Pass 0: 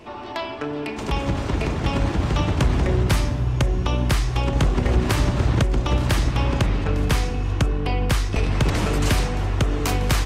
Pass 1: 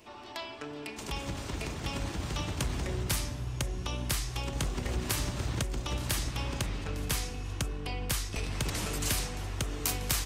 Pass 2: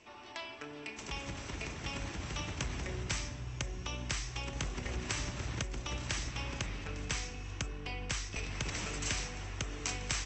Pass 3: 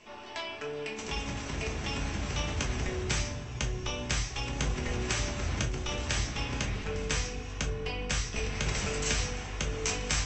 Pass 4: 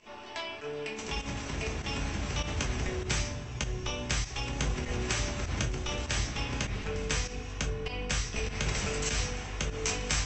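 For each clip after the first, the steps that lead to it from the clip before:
first-order pre-emphasis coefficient 0.8
Chebyshev low-pass with heavy ripple 7,900 Hz, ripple 6 dB
rectangular room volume 160 cubic metres, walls furnished, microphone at 1.4 metres; level +3 dB
fake sidechain pumping 99 BPM, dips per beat 1, −10 dB, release 89 ms

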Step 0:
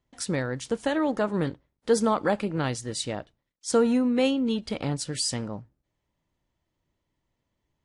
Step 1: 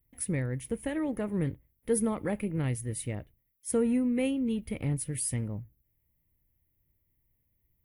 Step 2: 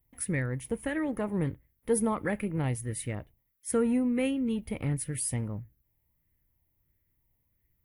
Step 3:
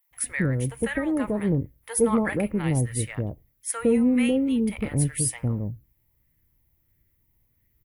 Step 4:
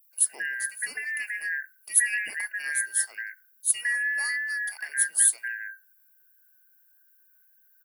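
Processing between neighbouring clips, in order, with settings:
drawn EQ curve 100 Hz 0 dB, 170 Hz −7 dB, 280 Hz −10 dB, 480 Hz −12 dB, 700 Hz −18 dB, 1,500 Hz −20 dB, 2,100 Hz −7 dB, 4,400 Hz −27 dB, 7,900 Hz −17 dB, 12,000 Hz +15 dB; level +5.5 dB
auto-filter bell 1.5 Hz 790–1,800 Hz +8 dB
multiband delay without the direct sound highs, lows 110 ms, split 790 Hz; level +6.5 dB
band-splitting scrambler in four parts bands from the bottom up 2143; first difference; hum removal 59.7 Hz, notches 2; level +4.5 dB

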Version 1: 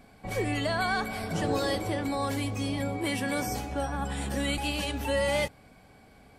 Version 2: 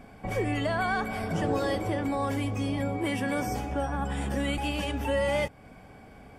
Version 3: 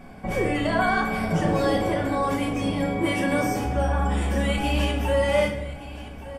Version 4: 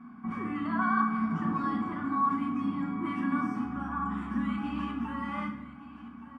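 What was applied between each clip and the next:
high-shelf EQ 3,500 Hz −8 dB; notch filter 4,100 Hz, Q 5.5; in parallel at +3 dB: downward compressor, threshold −39 dBFS, peak gain reduction 14 dB; on the sum: level −1.5 dB
single-tap delay 1,171 ms −16 dB; rectangular room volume 220 cubic metres, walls mixed, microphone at 1 metre; level +2.5 dB
pair of resonant band-passes 530 Hz, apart 2.3 octaves; level +4.5 dB

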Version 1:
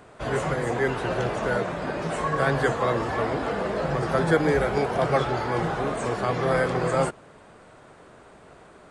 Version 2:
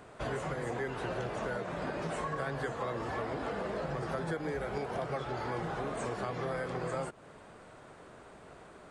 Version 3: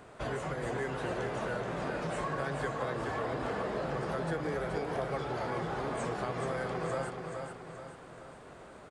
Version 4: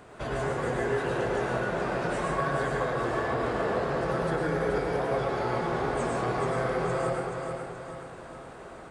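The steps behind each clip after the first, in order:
downward compressor 6 to 1, threshold −30 dBFS, peak gain reduction 14.5 dB; level −3 dB
repeating echo 427 ms, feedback 46%, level −5.5 dB
dense smooth reverb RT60 0.77 s, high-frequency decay 0.55×, pre-delay 90 ms, DRR −1.5 dB; level +2 dB

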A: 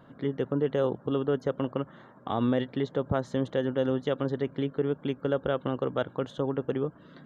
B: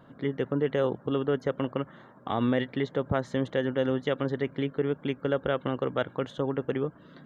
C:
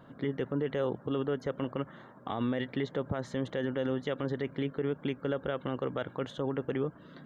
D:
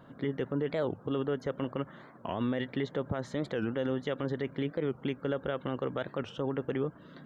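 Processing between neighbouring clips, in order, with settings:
dynamic equaliser 2,100 Hz, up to +8 dB, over −54 dBFS, Q 1.9
brickwall limiter −22 dBFS, peak gain reduction 10 dB
wow of a warped record 45 rpm, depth 250 cents

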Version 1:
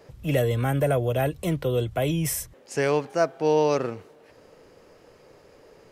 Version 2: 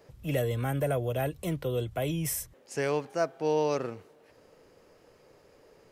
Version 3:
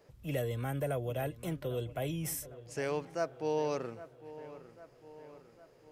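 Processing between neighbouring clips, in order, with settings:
high-shelf EQ 10,000 Hz +4.5 dB; level −6 dB
delay with a low-pass on its return 803 ms, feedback 57%, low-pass 2,500 Hz, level −15.5 dB; level −5.5 dB

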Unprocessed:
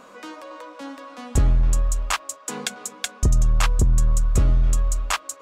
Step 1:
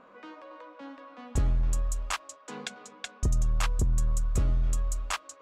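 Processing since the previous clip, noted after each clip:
low-pass that shuts in the quiet parts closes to 2,300 Hz, open at −18.5 dBFS
level −8 dB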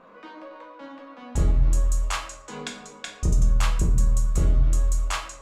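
rectangular room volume 100 cubic metres, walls mixed, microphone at 0.78 metres
level +1.5 dB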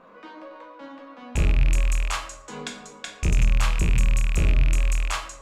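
loose part that buzzes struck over −27 dBFS, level −19 dBFS

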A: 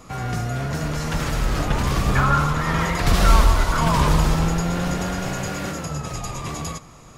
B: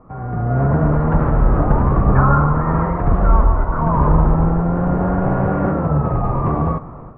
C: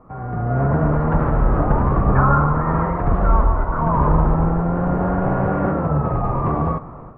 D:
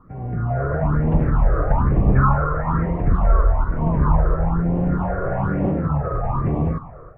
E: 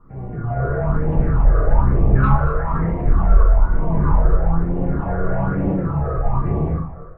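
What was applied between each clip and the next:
low-pass filter 1,200 Hz 24 dB per octave; automatic gain control gain up to 14 dB; level −1 dB
low-shelf EQ 360 Hz −3 dB
all-pass phaser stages 6, 1.1 Hz, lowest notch 220–1,400 Hz
soft clipping −6 dBFS, distortion −24 dB; rectangular room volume 32 cubic metres, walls mixed, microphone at 0.69 metres; level −5 dB

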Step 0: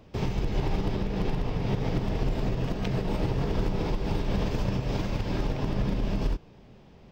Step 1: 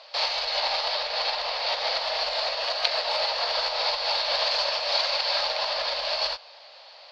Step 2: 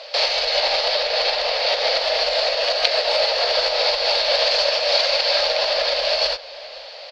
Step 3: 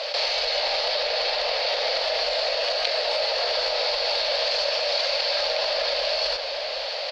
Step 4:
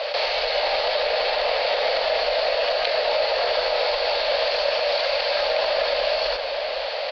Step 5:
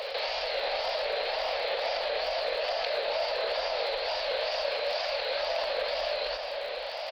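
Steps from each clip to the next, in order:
elliptic high-pass filter 570 Hz, stop band 40 dB; in parallel at −5 dB: soft clipping −36.5 dBFS, distortion −14 dB; on the sum: low-pass with resonance 4,400 Hz, resonance Q 11; level +6.5 dB
octave-band graphic EQ 125/500/1,000/4,000 Hz −9/+6/−10/−3 dB; in parallel at +1 dB: downward compressor, threshold −36 dBFS, peak gain reduction 14 dB; on the sum: slap from a distant wall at 88 metres, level −19 dB; level +6.5 dB
envelope flattener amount 70%; level −8 dB
high-frequency loss of the air 240 metres; level +5.5 dB
tape wow and flutter 120 cents; surface crackle 61 per second −33 dBFS; echo ahead of the sound 288 ms −12.5 dB; level −8.5 dB

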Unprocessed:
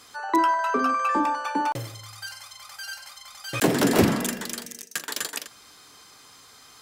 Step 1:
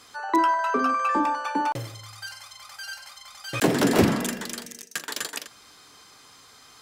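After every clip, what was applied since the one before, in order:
high-shelf EQ 9,800 Hz −5.5 dB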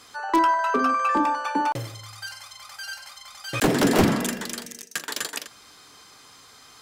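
wavefolder on the positive side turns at −14 dBFS
level +1.5 dB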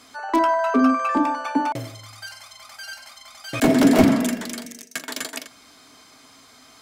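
hollow resonant body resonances 260/650/2,200 Hz, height 13 dB, ringing for 85 ms
level −1 dB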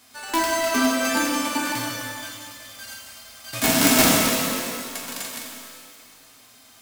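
spectral envelope flattened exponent 0.3
reverb with rising layers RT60 2 s, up +12 semitones, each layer −8 dB, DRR −1 dB
level −5 dB

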